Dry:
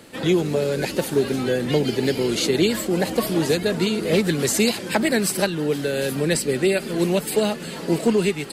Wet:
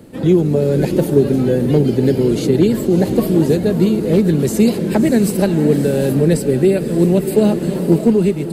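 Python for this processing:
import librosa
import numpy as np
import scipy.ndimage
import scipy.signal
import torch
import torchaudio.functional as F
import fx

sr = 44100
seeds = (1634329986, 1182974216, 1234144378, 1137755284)

p1 = fx.tilt_shelf(x, sr, db=10.0, hz=690.0)
p2 = np.clip(p1, -10.0 ** (-4.5 / 20.0), 10.0 ** (-4.5 / 20.0))
p3 = fx.high_shelf(p2, sr, hz=10000.0, db=11.5)
p4 = p3 + fx.echo_diffused(p3, sr, ms=608, feedback_pct=41, wet_db=-10.0, dry=0)
p5 = fx.rider(p4, sr, range_db=10, speed_s=0.5)
y = p5 * librosa.db_to_amplitude(1.5)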